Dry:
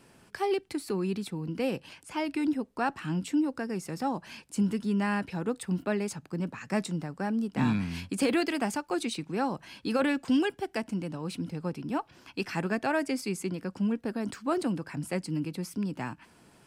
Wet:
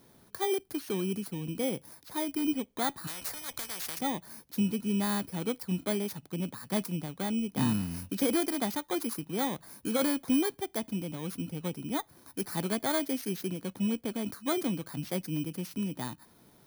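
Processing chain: bit-reversed sample order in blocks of 16 samples; 3.07–3.99 s: spectrum-flattening compressor 10:1; trim -1.5 dB

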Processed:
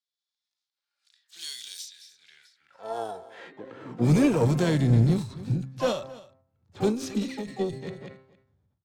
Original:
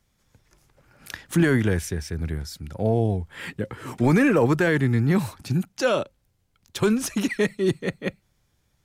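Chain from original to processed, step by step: de-hum 131.9 Hz, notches 17; level-controlled noise filter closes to 1 kHz, open at -15.5 dBFS; high-order bell 5.7 kHz +11 dB; harmonic-percussive split percussive -14 dB; dynamic bell 1.7 kHz, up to -7 dB, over -47 dBFS, Q 3.2; high-pass sweep 4 kHz -> 91 Hz, 2.13–4.35 s; harmony voices +4 st -15 dB, +7 st -17 dB, +12 st -14 dB; valve stage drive 12 dB, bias 0.3; on a send: delay 270 ms -19 dB; on the sum: endings held to a fixed fall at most 110 dB/s

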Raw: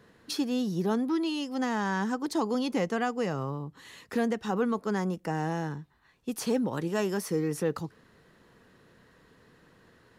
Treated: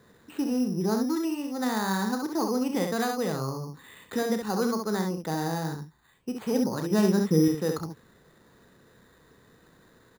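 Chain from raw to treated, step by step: 6.91–7.48 s: peaking EQ 180 Hz +10 dB 1.8 oct; loudspeakers at several distances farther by 11 m -10 dB, 23 m -5 dB; careless resampling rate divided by 8×, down filtered, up hold

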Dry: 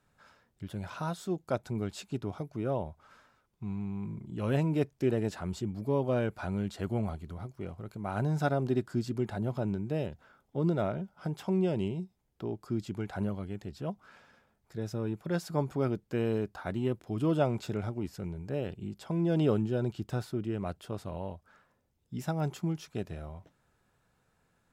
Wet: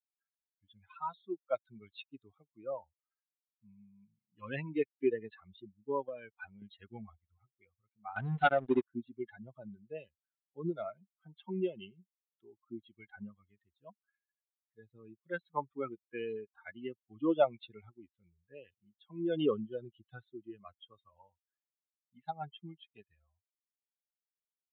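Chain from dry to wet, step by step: expander on every frequency bin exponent 3; 6.07–6.62 s: compression 8:1, threshold -45 dBFS, peak gain reduction 13 dB; high-pass 370 Hz 12 dB/octave; 8.16–8.86 s: waveshaping leveller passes 2; resampled via 8 kHz; trim +6.5 dB

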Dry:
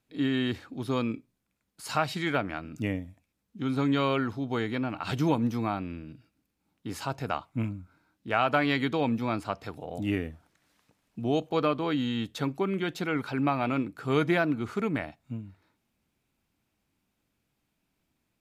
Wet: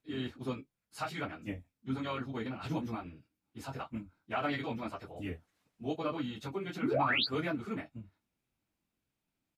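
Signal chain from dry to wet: painted sound rise, 13.13–13.95 s, 220–4800 Hz -21 dBFS; early reflections 23 ms -9 dB, 45 ms -9.5 dB; plain phase-vocoder stretch 0.52×; trim -6 dB

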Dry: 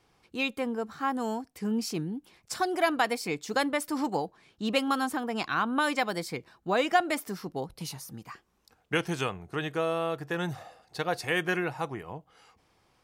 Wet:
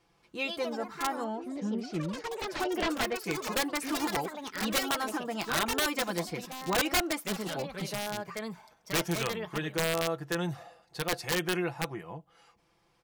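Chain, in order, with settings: treble shelf 6.6 kHz -2 dB; comb 5.9 ms, depth 58%; integer overflow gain 17.5 dB; 1.24–3.24 s: distance through air 200 m; ever faster or slower copies 177 ms, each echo +4 st, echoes 3, each echo -6 dB; trim -3.5 dB

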